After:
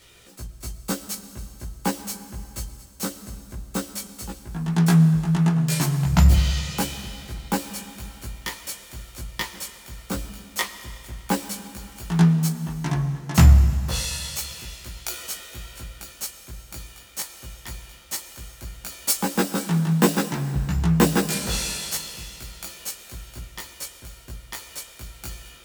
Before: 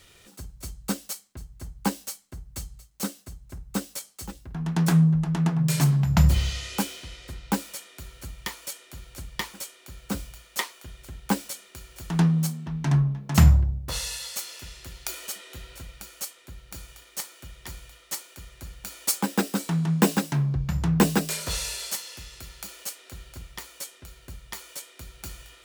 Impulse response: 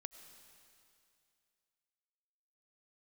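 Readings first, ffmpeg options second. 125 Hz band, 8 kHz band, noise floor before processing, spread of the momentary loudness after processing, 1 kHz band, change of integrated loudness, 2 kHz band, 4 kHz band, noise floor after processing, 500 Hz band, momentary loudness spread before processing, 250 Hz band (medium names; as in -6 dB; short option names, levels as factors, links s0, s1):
+2.5 dB, +3.0 dB, -55 dBFS, 20 LU, +3.0 dB, +2.5 dB, +3.0 dB, +3.0 dB, -47 dBFS, +4.0 dB, 21 LU, +2.5 dB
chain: -filter_complex "[0:a]asplit=2[s0][s1];[1:a]atrim=start_sample=2205,adelay=17[s2];[s1][s2]afir=irnorm=-1:irlink=0,volume=1.78[s3];[s0][s3]amix=inputs=2:normalize=0"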